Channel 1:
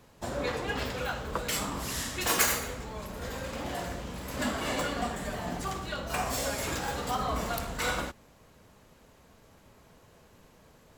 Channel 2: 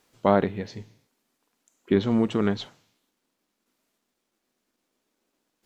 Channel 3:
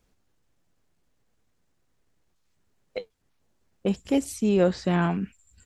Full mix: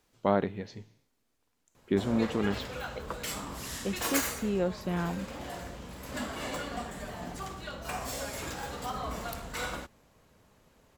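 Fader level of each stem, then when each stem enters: −5.0, −6.0, −8.5 decibels; 1.75, 0.00, 0.00 seconds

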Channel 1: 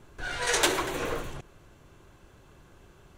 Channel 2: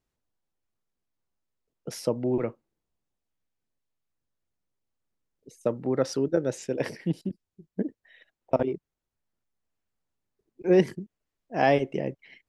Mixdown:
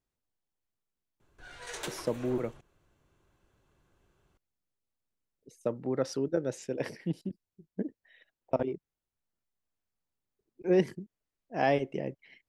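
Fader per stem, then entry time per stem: −15.5, −5.0 decibels; 1.20, 0.00 seconds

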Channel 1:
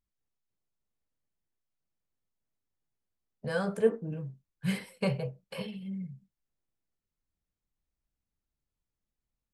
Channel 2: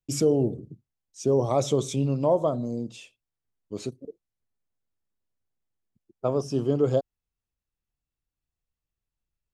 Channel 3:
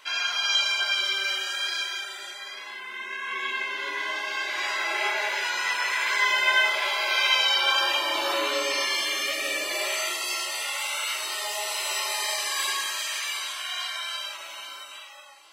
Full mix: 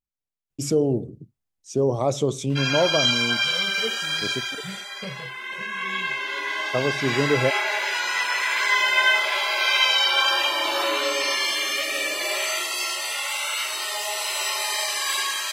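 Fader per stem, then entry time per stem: −7.0, +1.0, +2.5 decibels; 0.00, 0.50, 2.50 seconds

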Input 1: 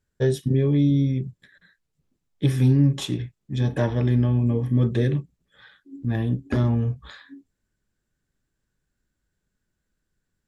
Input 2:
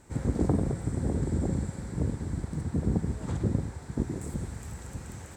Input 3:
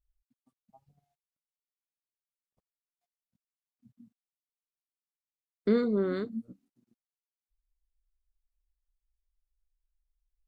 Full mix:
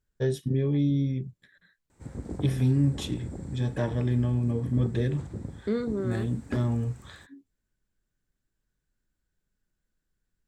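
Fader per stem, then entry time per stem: −5.5, −9.5, −3.0 decibels; 0.00, 1.90, 0.00 seconds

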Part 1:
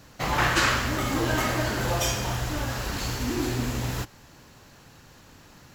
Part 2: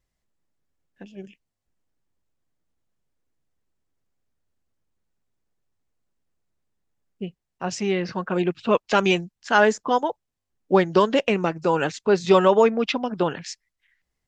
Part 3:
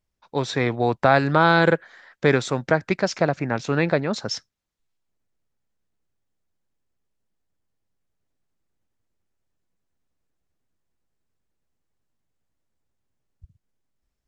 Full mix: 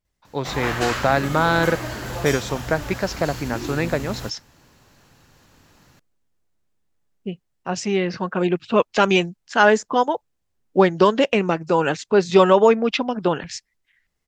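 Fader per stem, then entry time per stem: −3.5, +2.5, −2.0 decibels; 0.25, 0.05, 0.00 seconds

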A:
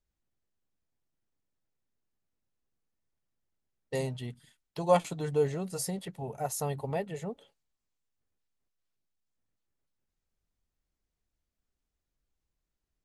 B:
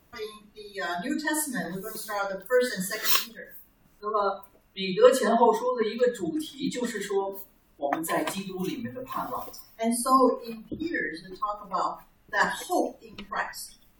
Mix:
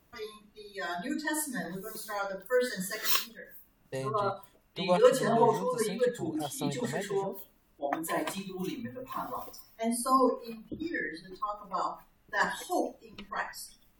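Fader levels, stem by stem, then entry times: −4.0, −4.5 decibels; 0.00, 0.00 seconds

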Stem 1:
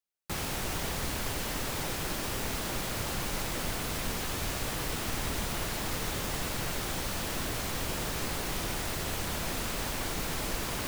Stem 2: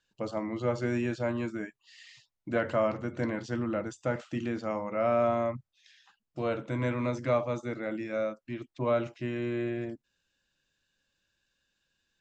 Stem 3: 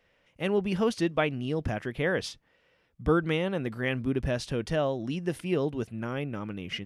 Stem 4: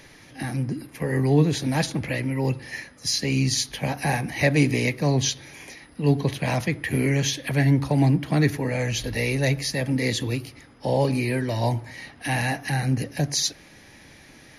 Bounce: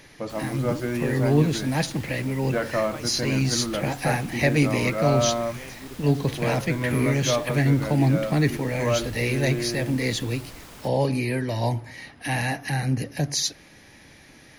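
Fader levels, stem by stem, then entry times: −10.5, +2.5, −13.5, −1.0 decibels; 0.00, 0.00, 1.75, 0.00 seconds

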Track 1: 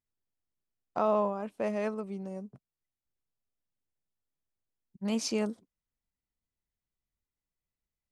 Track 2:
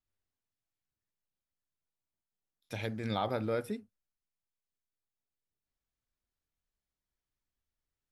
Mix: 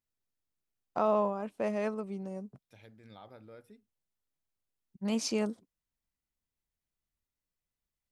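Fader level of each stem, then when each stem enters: −0.5, −19.0 decibels; 0.00, 0.00 seconds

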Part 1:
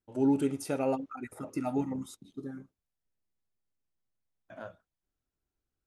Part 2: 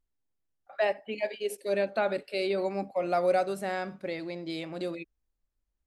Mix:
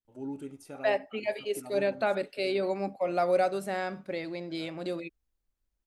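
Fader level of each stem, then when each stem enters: −12.0, 0.0 decibels; 0.00, 0.05 seconds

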